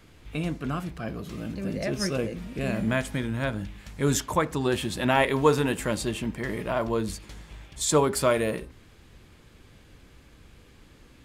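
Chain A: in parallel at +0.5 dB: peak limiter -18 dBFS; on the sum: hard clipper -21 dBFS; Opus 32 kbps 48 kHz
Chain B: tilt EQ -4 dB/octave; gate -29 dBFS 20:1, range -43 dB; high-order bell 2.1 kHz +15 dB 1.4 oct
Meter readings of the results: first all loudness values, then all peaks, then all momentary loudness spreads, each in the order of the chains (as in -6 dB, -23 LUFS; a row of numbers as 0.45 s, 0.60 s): -26.5 LUFS, -20.0 LUFS; -14.0 dBFS, -1.5 dBFS; 7 LU, 11 LU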